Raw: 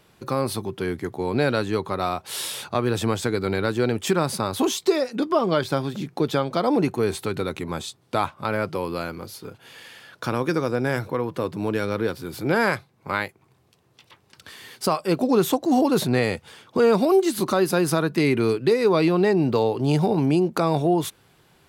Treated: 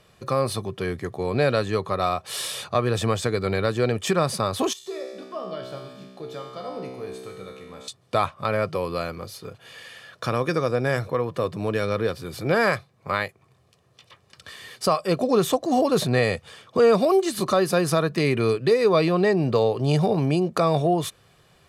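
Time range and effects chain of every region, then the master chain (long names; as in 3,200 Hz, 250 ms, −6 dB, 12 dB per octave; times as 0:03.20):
0:04.73–0:07.88: parametric band 13,000 Hz +3 dB 0.31 octaves + tuned comb filter 64 Hz, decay 1.4 s, mix 90%
whole clip: low-pass filter 11,000 Hz 12 dB per octave; comb filter 1.7 ms, depth 44%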